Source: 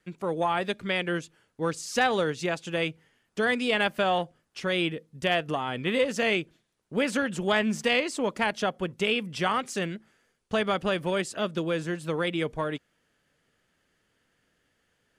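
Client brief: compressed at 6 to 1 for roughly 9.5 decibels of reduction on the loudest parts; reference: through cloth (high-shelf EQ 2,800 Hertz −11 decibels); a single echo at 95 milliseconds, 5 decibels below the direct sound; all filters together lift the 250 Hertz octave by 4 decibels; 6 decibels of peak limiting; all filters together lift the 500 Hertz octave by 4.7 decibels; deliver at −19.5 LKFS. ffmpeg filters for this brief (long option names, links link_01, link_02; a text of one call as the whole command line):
ffmpeg -i in.wav -af "equalizer=frequency=250:width_type=o:gain=4,equalizer=frequency=500:width_type=o:gain=5,acompressor=threshold=-26dB:ratio=6,alimiter=limit=-21dB:level=0:latency=1,highshelf=frequency=2800:gain=-11,aecho=1:1:95:0.562,volume=12.5dB" out.wav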